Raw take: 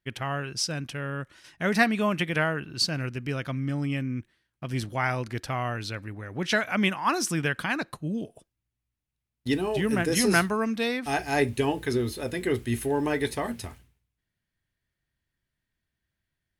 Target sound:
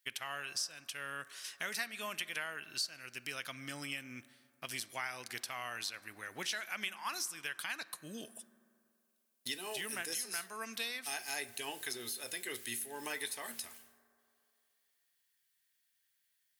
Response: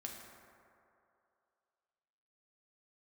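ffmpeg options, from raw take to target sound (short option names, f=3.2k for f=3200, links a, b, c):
-filter_complex "[0:a]aderivative,acompressor=threshold=-50dB:ratio=4,asplit=2[a][b];[1:a]atrim=start_sample=2205,lowpass=6.2k[c];[b][c]afir=irnorm=-1:irlink=0,volume=-10dB[d];[a][d]amix=inputs=2:normalize=0,deesser=1,volume=11dB"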